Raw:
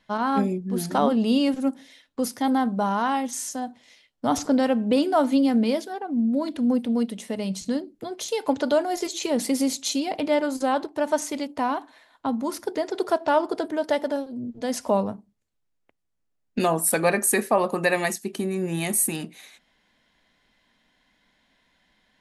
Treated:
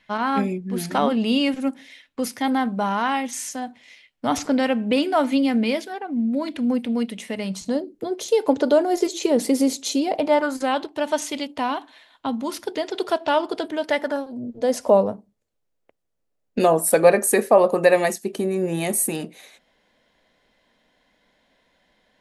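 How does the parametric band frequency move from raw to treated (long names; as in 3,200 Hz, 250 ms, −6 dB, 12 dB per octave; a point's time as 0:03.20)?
parametric band +9.5 dB 0.98 octaves
0:07.36 2,300 Hz
0:07.90 410 Hz
0:10.03 410 Hz
0:10.78 3,100 Hz
0:13.79 3,100 Hz
0:14.52 520 Hz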